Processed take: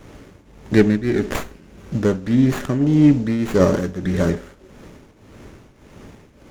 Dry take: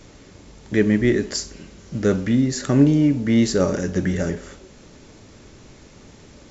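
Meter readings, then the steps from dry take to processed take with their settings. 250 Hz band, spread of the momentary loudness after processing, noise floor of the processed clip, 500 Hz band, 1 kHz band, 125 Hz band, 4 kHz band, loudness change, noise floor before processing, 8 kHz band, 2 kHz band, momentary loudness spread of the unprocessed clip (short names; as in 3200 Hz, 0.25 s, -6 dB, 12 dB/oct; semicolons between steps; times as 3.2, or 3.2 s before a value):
+1.5 dB, 10 LU, -50 dBFS, +2.0 dB, +4.5 dB, +2.0 dB, -4.0 dB, +1.0 dB, -47 dBFS, n/a, +0.5 dB, 11 LU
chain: tremolo triangle 1.7 Hz, depth 80%; running maximum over 9 samples; gain +6 dB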